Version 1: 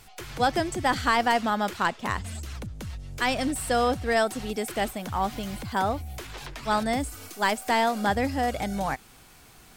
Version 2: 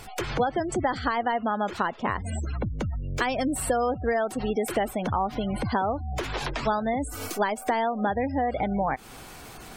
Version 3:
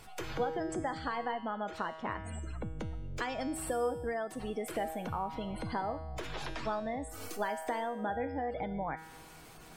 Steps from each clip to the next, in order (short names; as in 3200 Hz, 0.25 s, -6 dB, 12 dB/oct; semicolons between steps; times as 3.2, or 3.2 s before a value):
compressor 12:1, threshold -33 dBFS, peak gain reduction 16 dB; bell 540 Hz +5 dB 2.5 oct; spectral gate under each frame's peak -25 dB strong; gain +7.5 dB
resonator 160 Hz, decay 1.1 s, mix 80%; gain +2.5 dB